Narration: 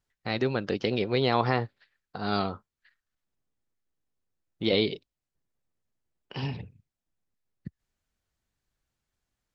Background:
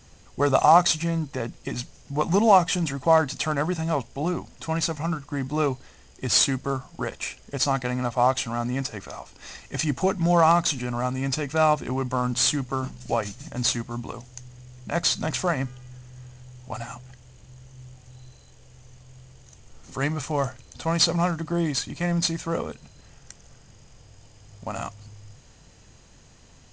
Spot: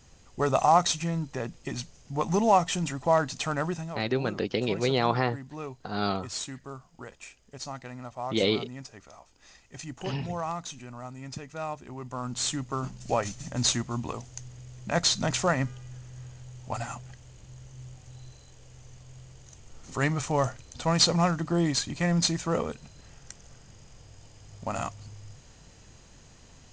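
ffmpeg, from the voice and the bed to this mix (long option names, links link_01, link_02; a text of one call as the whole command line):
ffmpeg -i stem1.wav -i stem2.wav -filter_complex "[0:a]adelay=3700,volume=-0.5dB[link_01];[1:a]volume=9.5dB,afade=type=out:start_time=3.68:duration=0.26:silence=0.316228,afade=type=in:start_time=11.92:duration=1.49:silence=0.211349[link_02];[link_01][link_02]amix=inputs=2:normalize=0" out.wav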